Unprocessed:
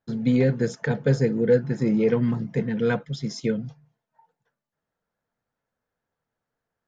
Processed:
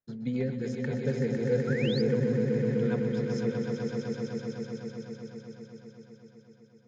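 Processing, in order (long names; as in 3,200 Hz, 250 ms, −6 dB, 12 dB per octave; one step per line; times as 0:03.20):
rotating-speaker cabinet horn 7 Hz
echo that builds up and dies away 126 ms, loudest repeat 5, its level −6 dB
sound drawn into the spectrogram rise, 0:01.67–0:02.02, 1,300–5,200 Hz −30 dBFS
level −9 dB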